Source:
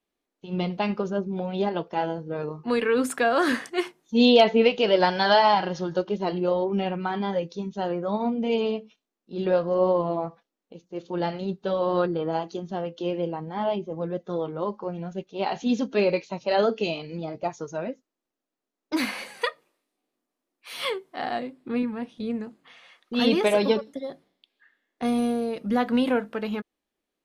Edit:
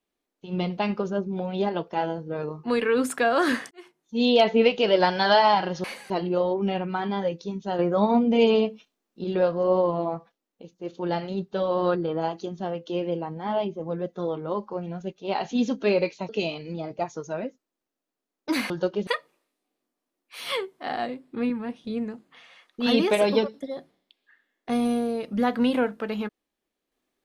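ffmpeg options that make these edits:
-filter_complex "[0:a]asplit=9[s0][s1][s2][s3][s4][s5][s6][s7][s8];[s0]atrim=end=3.71,asetpts=PTS-STARTPTS,afade=t=out:st=3.706:d=0.004:c=hsin[s9];[s1]atrim=start=3.71:end=5.842,asetpts=PTS-STARTPTS,afade=t=in:d=0.88[s10];[s2]atrim=start=19.138:end=19.402[s11];[s3]atrim=start=6.208:end=7.902[s12];[s4]atrim=start=7.898:end=9.352,asetpts=PTS-STARTPTS,volume=1.88[s13];[s5]atrim=start=9.348:end=16.402[s14];[s6]atrim=start=16.728:end=19.142[s15];[s7]atrim=start=5.838:end=6.212[s16];[s8]atrim=start=19.398[s17];[s9][s10]concat=n=2:v=0:a=1[s18];[s18][s11]acrossfade=d=0.004:c1=hsin:c2=hsin[s19];[s19][s12]acrossfade=d=0.004:c1=hsin:c2=hsin[s20];[s20][s13]acrossfade=d=0.004:c1=hsin:c2=hsin[s21];[s21][s14]acrossfade=d=0.004:c1=hsin:c2=hsin[s22];[s22][s15]acrossfade=d=0.004:c1=hsin:c2=hsin[s23];[s23][s16]acrossfade=d=0.004:c1=hsin:c2=hsin[s24];[s24][s17]acrossfade=d=0.004:c1=hsin:c2=hsin"

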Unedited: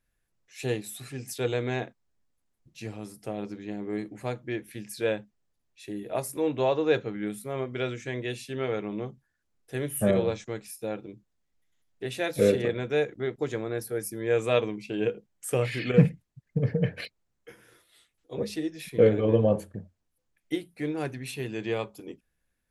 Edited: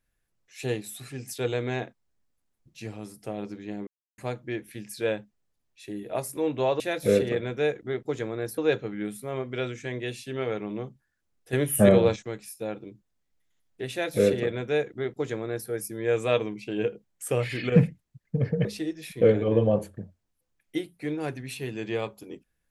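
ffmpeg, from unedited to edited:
-filter_complex "[0:a]asplit=8[s0][s1][s2][s3][s4][s5][s6][s7];[s0]atrim=end=3.87,asetpts=PTS-STARTPTS,afade=t=out:st=3.866:d=0.004:c=hsin[s8];[s1]atrim=start=3.87:end=4.18,asetpts=PTS-STARTPTS,volume=0[s9];[s2]atrim=start=4.18:end=6.802,asetpts=PTS-STARTPTS,afade=t=in:d=0.004:c=hsin[s10];[s3]atrim=start=12.128:end=13.912[s11];[s4]atrim=start=6.798:end=9.752[s12];[s5]atrim=start=9.748:end=10.382,asetpts=PTS-STARTPTS,volume=2[s13];[s6]atrim=start=10.378:end=16.872[s14];[s7]atrim=start=18.418[s15];[s8][s9][s10]concat=n=3:v=0:a=1[s16];[s16][s11]acrossfade=d=0.004:c1=hsin:c2=hsin[s17];[s17][s12]acrossfade=d=0.004:c1=hsin:c2=hsin[s18];[s18][s13]acrossfade=d=0.004:c1=hsin:c2=hsin[s19];[s19][s14]acrossfade=d=0.004:c1=hsin:c2=hsin[s20];[s20][s15]acrossfade=d=0.004:c1=hsin:c2=hsin"

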